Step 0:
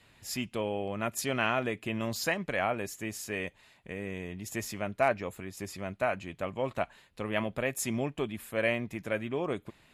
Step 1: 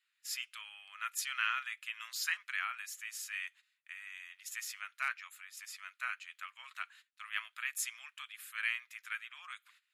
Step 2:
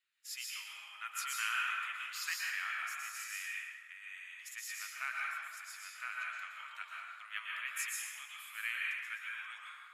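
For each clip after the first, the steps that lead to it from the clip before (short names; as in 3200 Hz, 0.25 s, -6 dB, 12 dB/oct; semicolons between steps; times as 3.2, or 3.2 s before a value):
gate -50 dBFS, range -16 dB; elliptic high-pass 1300 Hz, stop band 70 dB; gain -1.5 dB
plate-style reverb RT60 1.8 s, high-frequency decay 0.55×, pre-delay 0.105 s, DRR -3.5 dB; gain -4.5 dB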